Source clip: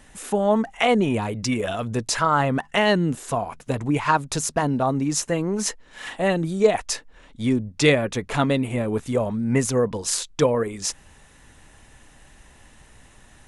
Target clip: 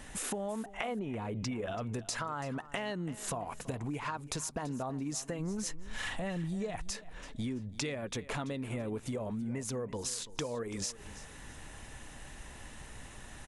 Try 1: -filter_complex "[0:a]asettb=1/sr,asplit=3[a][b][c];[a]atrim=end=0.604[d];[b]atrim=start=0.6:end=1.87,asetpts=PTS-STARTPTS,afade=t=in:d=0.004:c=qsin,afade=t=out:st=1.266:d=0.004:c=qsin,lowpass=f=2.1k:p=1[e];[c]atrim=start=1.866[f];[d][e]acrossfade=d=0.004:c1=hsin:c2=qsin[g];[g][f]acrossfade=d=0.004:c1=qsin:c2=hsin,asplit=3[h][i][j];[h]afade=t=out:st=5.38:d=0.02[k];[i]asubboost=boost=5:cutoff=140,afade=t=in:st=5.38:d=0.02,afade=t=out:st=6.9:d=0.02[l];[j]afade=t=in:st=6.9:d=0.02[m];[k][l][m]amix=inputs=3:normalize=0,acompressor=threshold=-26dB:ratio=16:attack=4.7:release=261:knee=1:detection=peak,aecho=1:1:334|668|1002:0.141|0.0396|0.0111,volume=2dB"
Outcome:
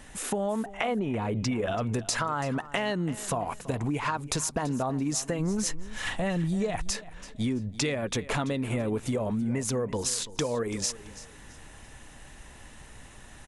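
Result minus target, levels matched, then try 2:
compressor: peak gain reduction -8 dB
-filter_complex "[0:a]asettb=1/sr,asplit=3[a][b][c];[a]atrim=end=0.604[d];[b]atrim=start=0.6:end=1.87,asetpts=PTS-STARTPTS,afade=t=in:d=0.004:c=qsin,afade=t=out:st=1.266:d=0.004:c=qsin,lowpass=f=2.1k:p=1[e];[c]atrim=start=1.866[f];[d][e]acrossfade=d=0.004:c1=hsin:c2=qsin[g];[g][f]acrossfade=d=0.004:c1=qsin:c2=hsin,asplit=3[h][i][j];[h]afade=t=out:st=5.38:d=0.02[k];[i]asubboost=boost=5:cutoff=140,afade=t=in:st=5.38:d=0.02,afade=t=out:st=6.9:d=0.02[l];[j]afade=t=in:st=6.9:d=0.02[m];[k][l][m]amix=inputs=3:normalize=0,acompressor=threshold=-34.5dB:ratio=16:attack=4.7:release=261:knee=1:detection=peak,aecho=1:1:334|668|1002:0.141|0.0396|0.0111,volume=2dB"

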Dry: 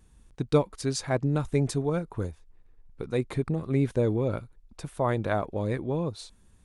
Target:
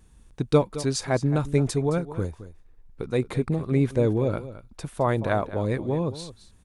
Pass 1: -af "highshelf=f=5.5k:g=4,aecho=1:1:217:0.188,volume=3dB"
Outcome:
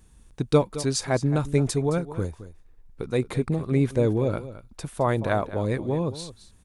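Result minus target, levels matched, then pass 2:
8000 Hz band +2.5 dB
-af "aecho=1:1:217:0.188,volume=3dB"

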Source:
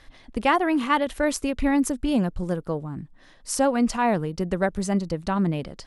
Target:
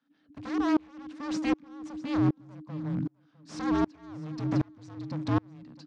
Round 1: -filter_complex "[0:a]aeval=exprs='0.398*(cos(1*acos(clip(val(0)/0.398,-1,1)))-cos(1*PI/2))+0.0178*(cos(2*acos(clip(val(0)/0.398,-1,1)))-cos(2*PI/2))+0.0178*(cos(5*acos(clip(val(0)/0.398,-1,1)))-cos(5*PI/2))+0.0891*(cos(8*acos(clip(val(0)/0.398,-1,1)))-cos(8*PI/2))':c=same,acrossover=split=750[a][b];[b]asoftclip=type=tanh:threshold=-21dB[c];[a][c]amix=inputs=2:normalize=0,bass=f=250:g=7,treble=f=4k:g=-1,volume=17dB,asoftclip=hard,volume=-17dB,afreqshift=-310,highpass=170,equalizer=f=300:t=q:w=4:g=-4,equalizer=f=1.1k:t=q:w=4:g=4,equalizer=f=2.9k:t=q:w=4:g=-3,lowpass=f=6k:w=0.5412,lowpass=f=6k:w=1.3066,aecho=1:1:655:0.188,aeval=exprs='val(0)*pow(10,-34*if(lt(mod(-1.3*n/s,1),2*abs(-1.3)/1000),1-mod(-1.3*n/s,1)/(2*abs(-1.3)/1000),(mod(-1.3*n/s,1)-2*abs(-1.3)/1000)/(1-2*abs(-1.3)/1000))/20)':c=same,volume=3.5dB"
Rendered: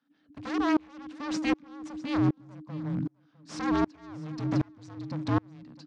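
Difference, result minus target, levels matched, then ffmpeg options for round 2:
soft clip: distortion -5 dB
-filter_complex "[0:a]aeval=exprs='0.398*(cos(1*acos(clip(val(0)/0.398,-1,1)))-cos(1*PI/2))+0.0178*(cos(2*acos(clip(val(0)/0.398,-1,1)))-cos(2*PI/2))+0.0178*(cos(5*acos(clip(val(0)/0.398,-1,1)))-cos(5*PI/2))+0.0891*(cos(8*acos(clip(val(0)/0.398,-1,1)))-cos(8*PI/2))':c=same,acrossover=split=750[a][b];[b]asoftclip=type=tanh:threshold=-28dB[c];[a][c]amix=inputs=2:normalize=0,bass=f=250:g=7,treble=f=4k:g=-1,volume=17dB,asoftclip=hard,volume=-17dB,afreqshift=-310,highpass=170,equalizer=f=300:t=q:w=4:g=-4,equalizer=f=1.1k:t=q:w=4:g=4,equalizer=f=2.9k:t=q:w=4:g=-3,lowpass=f=6k:w=0.5412,lowpass=f=6k:w=1.3066,aecho=1:1:655:0.188,aeval=exprs='val(0)*pow(10,-34*if(lt(mod(-1.3*n/s,1),2*abs(-1.3)/1000),1-mod(-1.3*n/s,1)/(2*abs(-1.3)/1000),(mod(-1.3*n/s,1)-2*abs(-1.3)/1000)/(1-2*abs(-1.3)/1000))/20)':c=same,volume=3.5dB"

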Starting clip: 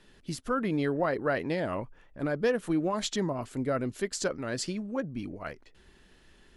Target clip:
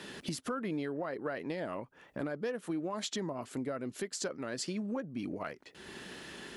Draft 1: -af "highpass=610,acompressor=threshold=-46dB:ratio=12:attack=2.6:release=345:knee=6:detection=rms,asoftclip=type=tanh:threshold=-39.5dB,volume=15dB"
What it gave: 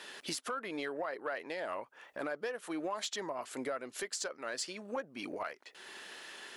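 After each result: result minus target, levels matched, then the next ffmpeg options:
125 Hz band -12.5 dB; soft clip: distortion +17 dB
-af "highpass=160,acompressor=threshold=-46dB:ratio=12:attack=2.6:release=345:knee=6:detection=rms,asoftclip=type=tanh:threshold=-39.5dB,volume=15dB"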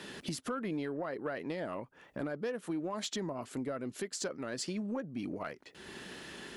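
soft clip: distortion +16 dB
-af "highpass=160,acompressor=threshold=-46dB:ratio=12:attack=2.6:release=345:knee=6:detection=rms,asoftclip=type=tanh:threshold=-31dB,volume=15dB"

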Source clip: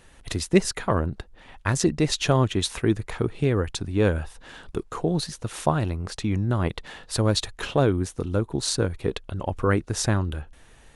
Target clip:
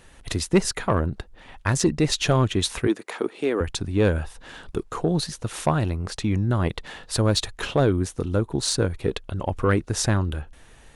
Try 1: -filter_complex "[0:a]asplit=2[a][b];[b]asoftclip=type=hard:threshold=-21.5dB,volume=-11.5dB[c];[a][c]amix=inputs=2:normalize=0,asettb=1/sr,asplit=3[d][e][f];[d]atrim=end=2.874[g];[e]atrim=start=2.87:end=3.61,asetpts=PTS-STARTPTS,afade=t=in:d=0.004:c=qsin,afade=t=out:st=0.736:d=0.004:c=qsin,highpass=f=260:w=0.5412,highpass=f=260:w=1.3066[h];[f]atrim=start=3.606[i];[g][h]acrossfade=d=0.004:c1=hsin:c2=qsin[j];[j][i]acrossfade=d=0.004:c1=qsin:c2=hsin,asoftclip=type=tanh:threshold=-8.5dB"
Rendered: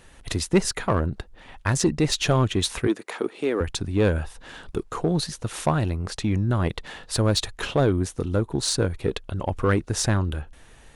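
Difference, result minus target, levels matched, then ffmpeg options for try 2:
hard clip: distortion +20 dB
-filter_complex "[0:a]asplit=2[a][b];[b]asoftclip=type=hard:threshold=-9.5dB,volume=-11.5dB[c];[a][c]amix=inputs=2:normalize=0,asettb=1/sr,asplit=3[d][e][f];[d]atrim=end=2.874[g];[e]atrim=start=2.87:end=3.61,asetpts=PTS-STARTPTS,afade=t=in:d=0.004:c=qsin,afade=t=out:st=0.736:d=0.004:c=qsin,highpass=f=260:w=0.5412,highpass=f=260:w=1.3066[h];[f]atrim=start=3.606[i];[g][h]acrossfade=d=0.004:c1=hsin:c2=qsin[j];[j][i]acrossfade=d=0.004:c1=qsin:c2=hsin,asoftclip=type=tanh:threshold=-8.5dB"

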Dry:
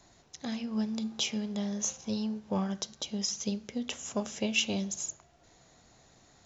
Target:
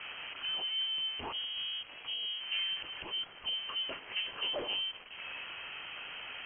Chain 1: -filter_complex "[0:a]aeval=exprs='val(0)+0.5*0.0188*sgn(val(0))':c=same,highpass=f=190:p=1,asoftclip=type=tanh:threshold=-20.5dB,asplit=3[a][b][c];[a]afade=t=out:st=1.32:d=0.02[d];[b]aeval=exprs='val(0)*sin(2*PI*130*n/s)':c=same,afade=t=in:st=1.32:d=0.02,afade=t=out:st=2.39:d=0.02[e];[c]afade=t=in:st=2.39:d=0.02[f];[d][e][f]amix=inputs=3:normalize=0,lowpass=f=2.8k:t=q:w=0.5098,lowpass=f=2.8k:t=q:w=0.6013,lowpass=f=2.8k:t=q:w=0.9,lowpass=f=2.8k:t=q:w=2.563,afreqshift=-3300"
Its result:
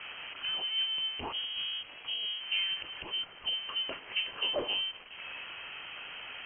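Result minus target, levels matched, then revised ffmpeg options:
soft clip: distortion -10 dB
-filter_complex "[0:a]aeval=exprs='val(0)+0.5*0.0188*sgn(val(0))':c=same,highpass=f=190:p=1,asoftclip=type=tanh:threshold=-29.5dB,asplit=3[a][b][c];[a]afade=t=out:st=1.32:d=0.02[d];[b]aeval=exprs='val(0)*sin(2*PI*130*n/s)':c=same,afade=t=in:st=1.32:d=0.02,afade=t=out:st=2.39:d=0.02[e];[c]afade=t=in:st=2.39:d=0.02[f];[d][e][f]amix=inputs=3:normalize=0,lowpass=f=2.8k:t=q:w=0.5098,lowpass=f=2.8k:t=q:w=0.6013,lowpass=f=2.8k:t=q:w=0.9,lowpass=f=2.8k:t=q:w=2.563,afreqshift=-3300"

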